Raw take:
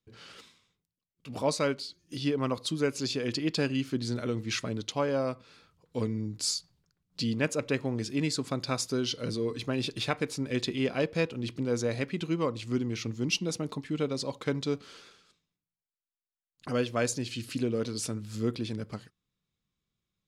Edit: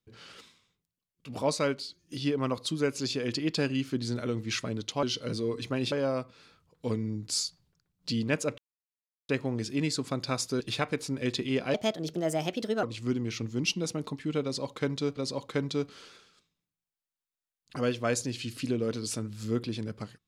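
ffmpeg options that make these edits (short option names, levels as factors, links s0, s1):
-filter_complex "[0:a]asplit=8[s0][s1][s2][s3][s4][s5][s6][s7];[s0]atrim=end=5.032[s8];[s1]atrim=start=8.998:end=9.892[s9];[s2]atrim=start=5.028:end=7.69,asetpts=PTS-STARTPTS,afade=t=out:st=2.658:d=0.004:c=hsin,apad=pad_dur=0.71[s10];[s3]atrim=start=7.69:end=9.002,asetpts=PTS-STARTPTS,afade=t=in:d=0.004:c=hsin[s11];[s4]atrim=start=9.888:end=11.034[s12];[s5]atrim=start=11.03:end=12.48,asetpts=PTS-STARTPTS,asetrate=58653,aresample=44100[s13];[s6]atrim=start=12.476:end=14.822[s14];[s7]atrim=start=14.088[s15];[s8][s9]acrossfade=d=0.004:c1=hsin:c2=hsin[s16];[s10][s11]concat=n=2:v=0:a=1[s17];[s16][s17]acrossfade=d=0.004:c1=hsin:c2=hsin[s18];[s18][s12]acrossfade=d=0.004:c1=hsin:c2=hsin[s19];[s19][s13]acrossfade=d=0.004:c1=hsin:c2=hsin[s20];[s20][s14]acrossfade=d=0.004:c1=hsin:c2=hsin[s21];[s21][s15]acrossfade=d=0.004:c1=hsin:c2=hsin"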